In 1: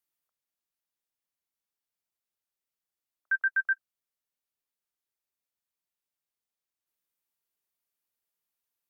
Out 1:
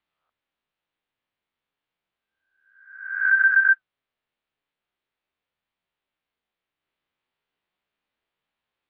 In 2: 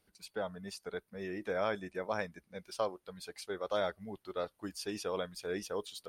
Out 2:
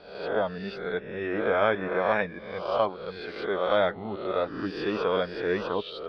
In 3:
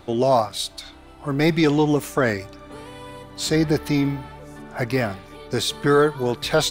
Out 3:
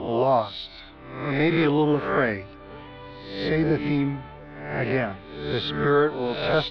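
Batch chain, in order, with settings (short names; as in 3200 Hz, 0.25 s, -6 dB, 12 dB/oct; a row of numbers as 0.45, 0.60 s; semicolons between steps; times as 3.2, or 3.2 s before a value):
spectral swells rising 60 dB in 0.82 s; inverse Chebyshev low-pass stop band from 6700 Hz, stop band 40 dB; flange 0.35 Hz, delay 0.9 ms, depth 8.1 ms, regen -65%; normalise peaks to -9 dBFS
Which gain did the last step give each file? +13.0, +12.5, 0.0 dB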